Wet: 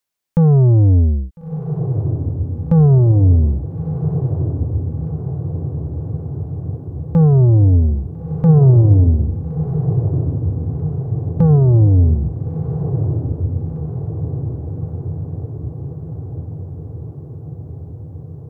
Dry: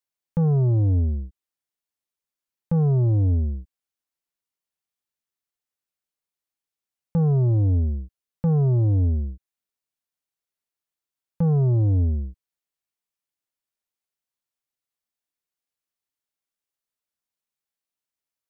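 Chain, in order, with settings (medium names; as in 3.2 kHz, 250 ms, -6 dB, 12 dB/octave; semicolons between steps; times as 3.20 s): echo that smears into a reverb 1357 ms, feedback 68%, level -8 dB; trim +8.5 dB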